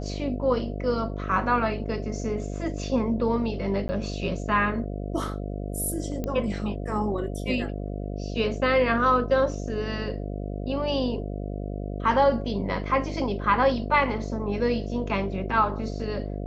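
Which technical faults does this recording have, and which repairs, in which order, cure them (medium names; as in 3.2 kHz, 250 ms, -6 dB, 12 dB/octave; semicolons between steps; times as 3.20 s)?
buzz 50 Hz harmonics 14 -32 dBFS
3.88–3.89 s: dropout 10 ms
6.24 s: pop -17 dBFS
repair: de-click; de-hum 50 Hz, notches 14; interpolate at 3.88 s, 10 ms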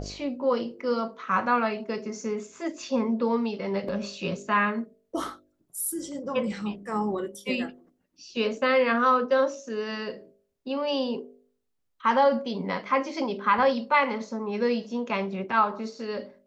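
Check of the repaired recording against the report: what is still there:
nothing left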